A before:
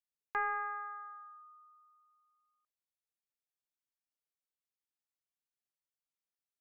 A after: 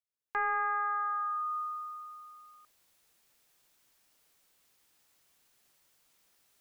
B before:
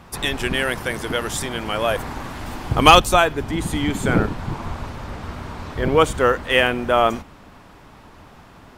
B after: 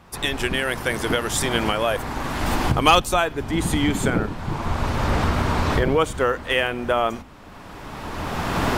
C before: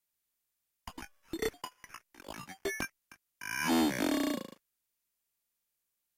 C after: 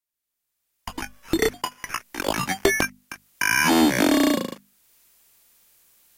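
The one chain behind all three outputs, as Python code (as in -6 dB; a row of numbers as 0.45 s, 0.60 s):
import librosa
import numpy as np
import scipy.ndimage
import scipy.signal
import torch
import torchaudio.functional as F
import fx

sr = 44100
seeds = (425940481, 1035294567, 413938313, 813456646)

y = fx.recorder_agc(x, sr, target_db=-5.5, rise_db_per_s=19.0, max_gain_db=30)
y = fx.hum_notches(y, sr, base_hz=50, count=5)
y = y * 10.0 ** (-5.0 / 20.0)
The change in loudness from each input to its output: +5.0 LU, -3.0 LU, +12.0 LU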